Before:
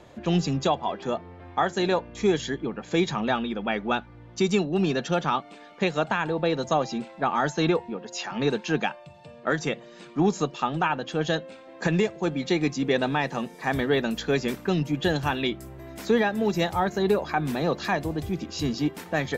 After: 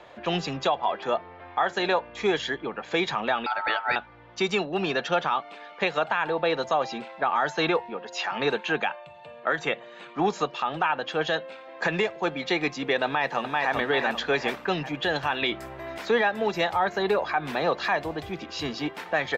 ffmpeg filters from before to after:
-filter_complex "[0:a]asettb=1/sr,asplit=3[s0][s1][s2];[s0]atrim=end=3.464[s3];[s1]atrim=start=3.46:end=3.96,asetpts=PTS-STARTPTS,afade=t=in:d=0.004:c=qsin,afade=t=out:st=0.496:d=0.004:c=qsin,aeval=exprs='val(0)*sin(2*PI*1100*n/s)':c=same[s4];[s2]atrim=start=3.956[s5];[s3][s4]acrossfade=d=0.004:c1=hsin:c2=qsin[s6];[s6][s5]acrossfade=d=0.004:c1=qsin:c2=hsin,asettb=1/sr,asplit=3[s7][s8][s9];[s7]atrim=end=8.534[s10];[s8]atrim=start=8.53:end=10.15,asetpts=PTS-STARTPTS,afade=t=in:d=0.004:c=qsin,afade=t=out:st=1.616:d=0.004:c=qsin,equalizer=f=5200:w=4.5:g=-12[s11];[s9]atrim=start=10.146[s12];[s10][s11]acrossfade=d=0.004:c1=hsin:c2=qsin[s13];[s13][s12]acrossfade=d=0.004:c1=qsin:c2=hsin,asplit=2[s14][s15];[s15]afade=t=in:st=13.05:d=0.01,afade=t=out:st=13.73:d=0.01,aecho=0:1:390|780|1170|1560|1950:0.668344|0.267338|0.106935|0.042774|0.0171096[s16];[s14][s16]amix=inputs=2:normalize=0,asettb=1/sr,asplit=3[s17][s18][s19];[s17]atrim=end=15.424[s20];[s18]atrim=start=15.42:end=15.98,asetpts=PTS-STARTPTS,afade=t=in:d=0.004:c=qsin,afade=t=out:st=0.556:d=0.004:c=qsin,acontrast=27[s21];[s19]atrim=start=15.976[s22];[s20][s21]acrossfade=d=0.004:c1=hsin:c2=qsin[s23];[s23][s22]acrossfade=d=0.004:c1=qsin:c2=hsin,acrossover=split=500 4200:gain=0.178 1 0.158[s24][s25][s26];[s24][s25][s26]amix=inputs=3:normalize=0,alimiter=limit=0.1:level=0:latency=1:release=73,volume=2"

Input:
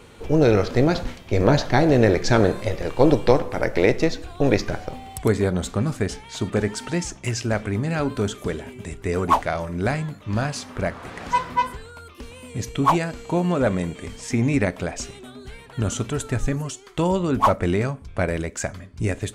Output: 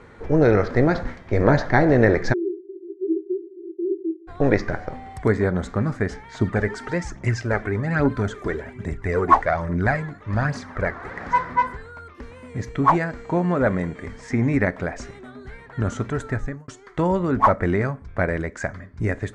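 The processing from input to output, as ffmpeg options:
-filter_complex "[0:a]asplit=3[s0][s1][s2];[s0]afade=t=out:st=2.32:d=0.02[s3];[s1]asuperpass=centerf=360:order=20:qfactor=4.1,afade=t=in:st=2.32:d=0.02,afade=t=out:st=4.27:d=0.02[s4];[s2]afade=t=in:st=4.27:d=0.02[s5];[s3][s4][s5]amix=inputs=3:normalize=0,asettb=1/sr,asplit=3[s6][s7][s8];[s6]atrim=end=6.394[s9];[s7]atrim=start=6.39:end=11.13,asetpts=PTS-STARTPTS,afade=t=in:d=0.004:c=qsin,afade=t=out:st=4.736:d=0.004:c=qsin,aphaser=in_gain=1:out_gain=1:delay=3:decay=0.5:speed=1.2:type=triangular[s10];[s8]atrim=start=11.126[s11];[s9][s10]acrossfade=d=0.004:c1=hsin:c2=qsin[s12];[s12][s11]acrossfade=d=0.004:c1=qsin:c2=hsin,asplit=2[s13][s14];[s13]atrim=end=16.68,asetpts=PTS-STARTPTS,afade=t=out:st=16.28:d=0.4[s15];[s14]atrim=start=16.68,asetpts=PTS-STARTPTS,afade=t=in:d=0.004:c=hsin[s16];[s15][s16]concat=n=2:v=0:a=1,lowpass=5800,highshelf=f=2300:t=q:w=3:g=-6"

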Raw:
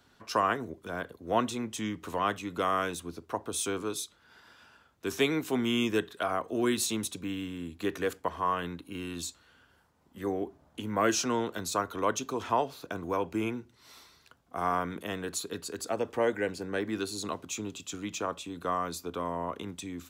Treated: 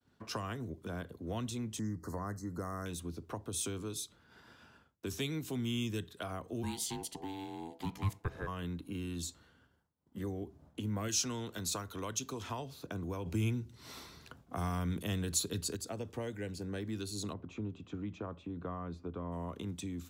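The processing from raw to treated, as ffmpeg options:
-filter_complex "[0:a]asettb=1/sr,asplit=3[s0][s1][s2];[s0]atrim=end=1.794[s3];[s1]atrim=start=1.79:end=2.86,asetpts=PTS-STARTPTS,afade=t=in:d=0.004:c=qsin,afade=t=out:st=1.066:d=0.004:c=qsin,asuperstop=centerf=2900:order=20:qfactor=1.3[s4];[s2]atrim=start=2.856[s5];[s3][s4]acrossfade=d=0.004:c1=hsin:c2=qsin[s6];[s6][s5]acrossfade=d=0.004:c1=qsin:c2=hsin,asplit=3[s7][s8][s9];[s7]afade=t=out:st=6.62:d=0.02[s10];[s8]aeval=exprs='val(0)*sin(2*PI*580*n/s)':c=same,afade=t=in:st=6.62:d=0.02,afade=t=out:st=8.46:d=0.02[s11];[s9]afade=t=in:st=8.46:d=0.02[s12];[s10][s11][s12]amix=inputs=3:normalize=0,asettb=1/sr,asplit=3[s13][s14][s15];[s13]atrim=end=9.174[s16];[s14]atrim=start=9.17:end=10.44,asetpts=PTS-STARTPTS,afade=t=in:d=0.004:c=qsin,afade=t=out:st=1.266:d=0.004:c=qsin,bandreject=f=2500:w=12[s17];[s15]atrim=start=10.436[s18];[s16][s17]acrossfade=d=0.004:c1=hsin:c2=qsin[s19];[s19][s18]acrossfade=d=0.004:c1=qsin:c2=hsin,asettb=1/sr,asplit=3[s20][s21][s22];[s20]atrim=end=11.084[s23];[s21]atrim=start=11.08:end=12.59,asetpts=PTS-STARTPTS,afade=t=in:d=0.004:c=qsin,afade=t=out:st=1.506:d=0.004:c=qsin,tiltshelf=f=970:g=-3.5[s24];[s22]atrim=start=12.586[s25];[s23][s24]acrossfade=d=0.004:c1=hsin:c2=qsin[s26];[s26][s25]acrossfade=d=0.004:c1=qsin:c2=hsin,asplit=3[s27][s28][s29];[s27]afade=t=out:st=13.25:d=0.02[s30];[s28]acontrast=80,afade=t=in:st=13.25:d=0.02,afade=t=out:st=15.75:d=0.02[s31];[s29]afade=t=in:st=15.75:d=0.02[s32];[s30][s31][s32]amix=inputs=3:normalize=0,asplit=3[s33][s34][s35];[s33]afade=t=out:st=17.32:d=0.02[s36];[s34]lowpass=1700,afade=t=in:st=17.32:d=0.02,afade=t=out:st=19.31:d=0.02[s37];[s35]afade=t=in:st=19.31:d=0.02[s38];[s36][s37][s38]amix=inputs=3:normalize=0,agate=range=0.0224:threshold=0.00158:ratio=3:detection=peak,equalizer=f=130:w=0.31:g=10.5,acrossover=split=130|3000[s39][s40][s41];[s40]acompressor=threshold=0.0158:ratio=5[s42];[s39][s42][s41]amix=inputs=3:normalize=0,volume=0.631"

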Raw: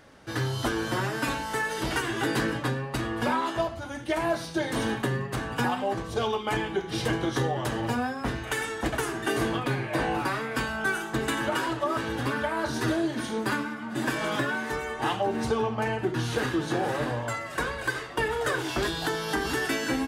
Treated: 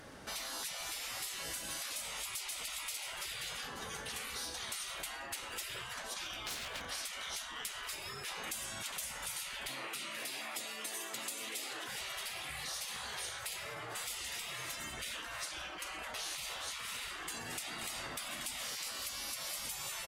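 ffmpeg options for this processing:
-filter_complex "[0:a]asplit=2[s0][s1];[s1]afade=t=in:st=1.95:d=0.01,afade=t=out:st=2.59:d=0.01,aecho=0:1:530|1060|1590|2120|2650:0.794328|0.278015|0.0973052|0.0340568|0.0119199[s2];[s0][s2]amix=inputs=2:normalize=0,asettb=1/sr,asplit=3[s3][s4][s5];[s3]atrim=end=6.454[s6];[s4]atrim=start=6.45:end=6.88,asetpts=PTS-STARTPTS,afade=t=in:d=0.004:c=qsin,afade=t=out:st=0.426:d=0.004:c=qsin,aeval=exprs='0.0316*(abs(mod(val(0)/0.0316+3,4)-2)-1)':c=same[s7];[s5]atrim=start=6.876[s8];[s6][s7]acrossfade=d=0.004:c1=hsin:c2=qsin[s9];[s9][s8]acrossfade=d=0.004:c1=qsin:c2=hsin,asettb=1/sr,asplit=3[s10][s11][s12];[s10]atrim=end=9.684[s13];[s11]atrim=start=9.68:end=11.88,asetpts=PTS-STARTPTS,afade=t=in:d=0.004:c=qsin,afade=t=out:st=2.196:d=0.004:c=qsin,highpass=710[s14];[s12]atrim=start=11.876[s15];[s13][s14]acrossfade=d=0.004:c1=hsin:c2=qsin[s16];[s16][s15]acrossfade=d=0.004:c1=qsin:c2=hsin,afftfilt=real='re*lt(hypot(re,im),0.0355)':imag='im*lt(hypot(re,im),0.0355)':win_size=1024:overlap=0.75,equalizer=f=13000:w=0.41:g=6.5,acompressor=threshold=0.0112:ratio=6,volume=1.12"

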